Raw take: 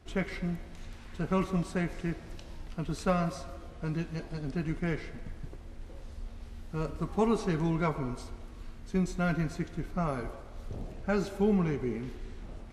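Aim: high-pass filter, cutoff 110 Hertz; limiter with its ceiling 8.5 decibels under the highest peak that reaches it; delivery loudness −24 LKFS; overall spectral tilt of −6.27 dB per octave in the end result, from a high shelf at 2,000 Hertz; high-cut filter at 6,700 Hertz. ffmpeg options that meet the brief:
ffmpeg -i in.wav -af "highpass=110,lowpass=6700,highshelf=frequency=2000:gain=3.5,volume=11.5dB,alimiter=limit=-11dB:level=0:latency=1" out.wav

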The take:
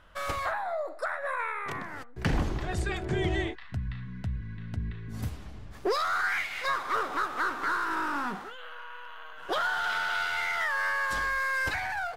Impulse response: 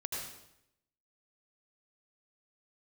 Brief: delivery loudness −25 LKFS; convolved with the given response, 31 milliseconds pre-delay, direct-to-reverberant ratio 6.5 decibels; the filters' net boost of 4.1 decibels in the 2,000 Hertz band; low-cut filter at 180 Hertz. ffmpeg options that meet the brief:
-filter_complex "[0:a]highpass=180,equalizer=frequency=2000:width_type=o:gain=5.5,asplit=2[link_01][link_02];[1:a]atrim=start_sample=2205,adelay=31[link_03];[link_02][link_03]afir=irnorm=-1:irlink=0,volume=-8.5dB[link_04];[link_01][link_04]amix=inputs=2:normalize=0,volume=1.5dB"

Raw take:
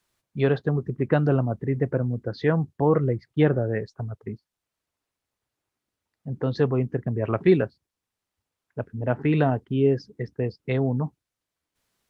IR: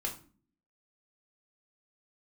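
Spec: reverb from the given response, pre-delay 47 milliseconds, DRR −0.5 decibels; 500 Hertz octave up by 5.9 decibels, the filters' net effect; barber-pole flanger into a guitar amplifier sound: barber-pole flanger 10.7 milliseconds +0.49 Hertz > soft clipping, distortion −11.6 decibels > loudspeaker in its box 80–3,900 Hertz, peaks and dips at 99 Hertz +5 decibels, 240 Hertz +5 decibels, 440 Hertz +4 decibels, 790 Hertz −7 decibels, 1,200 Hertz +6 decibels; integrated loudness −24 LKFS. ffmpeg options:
-filter_complex "[0:a]equalizer=frequency=500:width_type=o:gain=4,asplit=2[link_01][link_02];[1:a]atrim=start_sample=2205,adelay=47[link_03];[link_02][link_03]afir=irnorm=-1:irlink=0,volume=-2dB[link_04];[link_01][link_04]amix=inputs=2:normalize=0,asplit=2[link_05][link_06];[link_06]adelay=10.7,afreqshift=0.49[link_07];[link_05][link_07]amix=inputs=2:normalize=1,asoftclip=threshold=-17.5dB,highpass=80,equalizer=frequency=99:width_type=q:width=4:gain=5,equalizer=frequency=240:width_type=q:width=4:gain=5,equalizer=frequency=440:width_type=q:width=4:gain=4,equalizer=frequency=790:width_type=q:width=4:gain=-7,equalizer=frequency=1200:width_type=q:width=4:gain=6,lowpass=frequency=3900:width=0.5412,lowpass=frequency=3900:width=1.3066,volume=-0.5dB"

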